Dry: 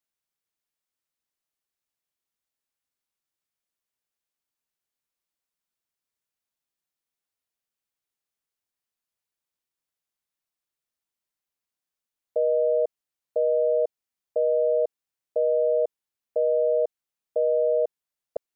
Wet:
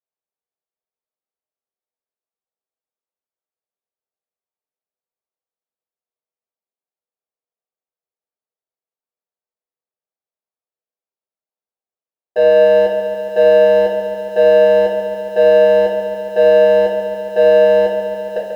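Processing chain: band-pass 590 Hz, Q 1.8; sample leveller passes 2; shoebox room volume 33 m³, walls mixed, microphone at 1.1 m; lo-fi delay 0.14 s, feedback 80%, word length 8-bit, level -9 dB; gain +1.5 dB

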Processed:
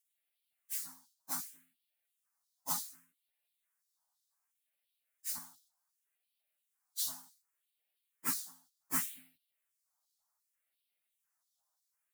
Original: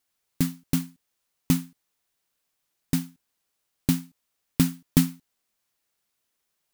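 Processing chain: LFO high-pass square 5.2 Hz 700–3700 Hz; phaser stages 4, 1.2 Hz, lowest notch 390–1100 Hz; plain phase-vocoder stretch 1.8×; gain -2.5 dB

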